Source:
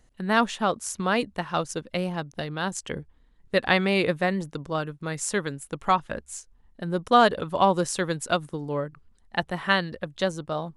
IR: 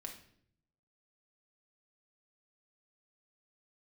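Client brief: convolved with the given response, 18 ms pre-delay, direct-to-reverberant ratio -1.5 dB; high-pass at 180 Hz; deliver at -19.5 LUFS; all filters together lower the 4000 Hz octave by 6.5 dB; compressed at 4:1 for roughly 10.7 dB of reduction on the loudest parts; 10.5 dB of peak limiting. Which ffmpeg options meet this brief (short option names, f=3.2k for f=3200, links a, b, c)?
-filter_complex "[0:a]highpass=180,equalizer=f=4k:t=o:g=-9,acompressor=threshold=-25dB:ratio=4,alimiter=limit=-21.5dB:level=0:latency=1,asplit=2[a][b];[1:a]atrim=start_sample=2205,adelay=18[c];[b][c]afir=irnorm=-1:irlink=0,volume=5dB[d];[a][d]amix=inputs=2:normalize=0,volume=11.5dB"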